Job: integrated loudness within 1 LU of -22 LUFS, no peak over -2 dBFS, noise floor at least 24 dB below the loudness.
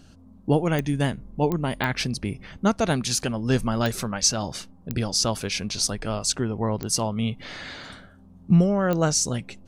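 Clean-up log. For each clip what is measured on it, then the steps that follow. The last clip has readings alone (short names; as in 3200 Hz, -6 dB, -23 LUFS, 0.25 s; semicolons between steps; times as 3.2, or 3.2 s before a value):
clicks 7; loudness -24.5 LUFS; peak -8.0 dBFS; loudness target -22.0 LUFS
-> de-click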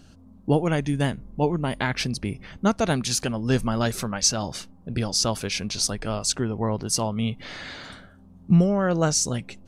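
clicks 0; loudness -24.5 LUFS; peak -8.0 dBFS; loudness target -22.0 LUFS
-> gain +2.5 dB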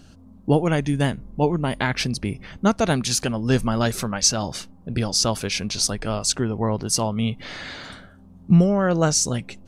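loudness -22.0 LUFS; peak -5.5 dBFS; noise floor -48 dBFS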